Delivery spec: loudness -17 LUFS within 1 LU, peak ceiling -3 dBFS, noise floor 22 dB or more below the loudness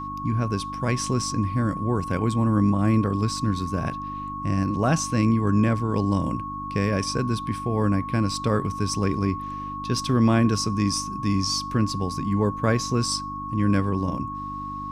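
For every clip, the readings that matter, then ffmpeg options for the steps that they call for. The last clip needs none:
hum 50 Hz; highest harmonic 300 Hz; hum level -35 dBFS; steady tone 1.1 kHz; tone level -31 dBFS; loudness -24.5 LUFS; peak level -7.5 dBFS; loudness target -17.0 LUFS
-> -af "bandreject=f=50:t=h:w=4,bandreject=f=100:t=h:w=4,bandreject=f=150:t=h:w=4,bandreject=f=200:t=h:w=4,bandreject=f=250:t=h:w=4,bandreject=f=300:t=h:w=4"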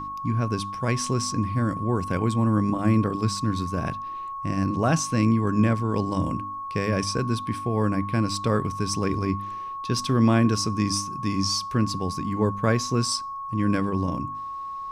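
hum not found; steady tone 1.1 kHz; tone level -31 dBFS
-> -af "bandreject=f=1100:w=30"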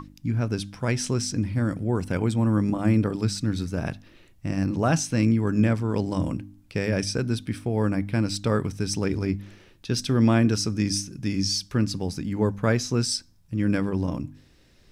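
steady tone not found; loudness -25.5 LUFS; peak level -8.0 dBFS; loudness target -17.0 LUFS
-> -af "volume=2.66,alimiter=limit=0.708:level=0:latency=1"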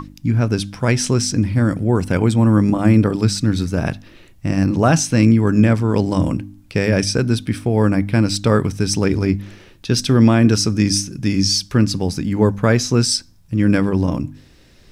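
loudness -17.0 LUFS; peak level -3.0 dBFS; noise floor -48 dBFS

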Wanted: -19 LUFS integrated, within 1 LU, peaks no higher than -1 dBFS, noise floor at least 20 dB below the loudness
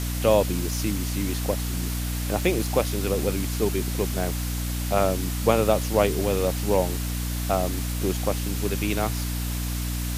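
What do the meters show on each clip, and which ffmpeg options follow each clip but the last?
hum 60 Hz; highest harmonic 300 Hz; hum level -26 dBFS; noise floor -28 dBFS; noise floor target -46 dBFS; loudness -25.5 LUFS; peak level -5.0 dBFS; loudness target -19.0 LUFS
-> -af "bandreject=f=60:t=h:w=6,bandreject=f=120:t=h:w=6,bandreject=f=180:t=h:w=6,bandreject=f=240:t=h:w=6,bandreject=f=300:t=h:w=6"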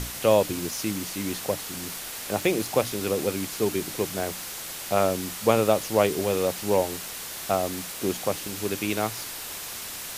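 hum not found; noise floor -37 dBFS; noise floor target -47 dBFS
-> -af "afftdn=nr=10:nf=-37"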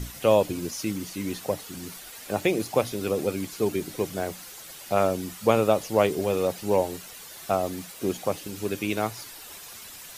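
noise floor -44 dBFS; noise floor target -47 dBFS
-> -af "afftdn=nr=6:nf=-44"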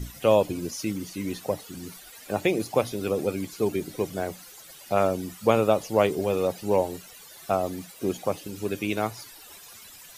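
noise floor -48 dBFS; loudness -27.0 LUFS; peak level -5.0 dBFS; loudness target -19.0 LUFS
-> -af "volume=2.51,alimiter=limit=0.891:level=0:latency=1"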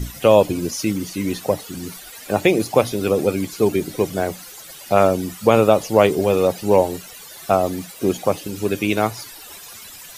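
loudness -19.5 LUFS; peak level -1.0 dBFS; noise floor -40 dBFS

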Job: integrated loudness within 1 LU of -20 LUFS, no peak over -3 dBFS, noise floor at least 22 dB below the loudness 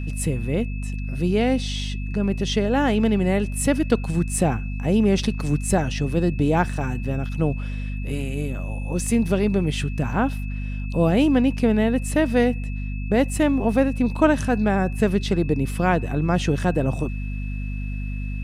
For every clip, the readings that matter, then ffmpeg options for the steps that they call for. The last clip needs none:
hum 50 Hz; highest harmonic 250 Hz; hum level -25 dBFS; steady tone 2.6 kHz; tone level -41 dBFS; loudness -23.0 LUFS; peak level -3.5 dBFS; loudness target -20.0 LUFS
-> -af "bandreject=f=50:t=h:w=6,bandreject=f=100:t=h:w=6,bandreject=f=150:t=h:w=6,bandreject=f=200:t=h:w=6,bandreject=f=250:t=h:w=6"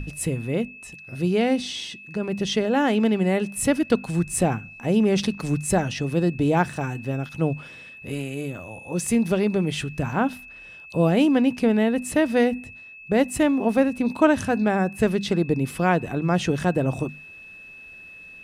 hum not found; steady tone 2.6 kHz; tone level -41 dBFS
-> -af "bandreject=f=2600:w=30"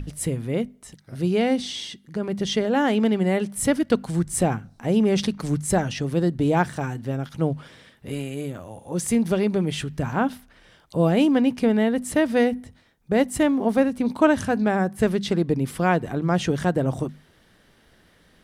steady tone not found; loudness -23.5 LUFS; peak level -3.5 dBFS; loudness target -20.0 LUFS
-> -af "volume=1.5,alimiter=limit=0.708:level=0:latency=1"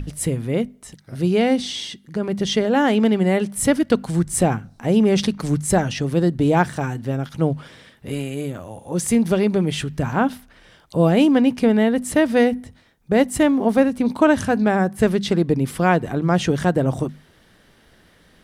loudness -20.0 LUFS; peak level -3.0 dBFS; noise floor -54 dBFS

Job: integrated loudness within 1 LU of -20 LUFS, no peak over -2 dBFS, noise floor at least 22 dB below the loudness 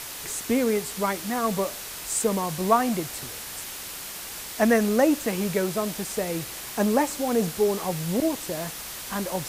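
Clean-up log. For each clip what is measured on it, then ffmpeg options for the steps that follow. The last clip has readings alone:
noise floor -37 dBFS; noise floor target -48 dBFS; loudness -26.0 LUFS; peak level -7.0 dBFS; loudness target -20.0 LUFS
-> -af "afftdn=nr=11:nf=-37"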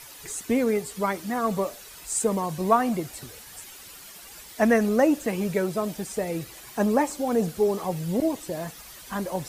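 noise floor -45 dBFS; noise floor target -48 dBFS
-> -af "afftdn=nr=6:nf=-45"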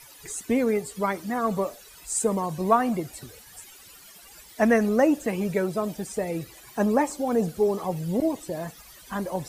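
noise floor -49 dBFS; loudness -26.0 LUFS; peak level -7.0 dBFS; loudness target -20.0 LUFS
-> -af "volume=2,alimiter=limit=0.794:level=0:latency=1"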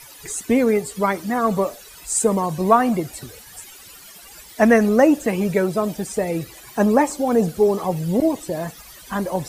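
loudness -20.0 LUFS; peak level -2.0 dBFS; noise floor -43 dBFS

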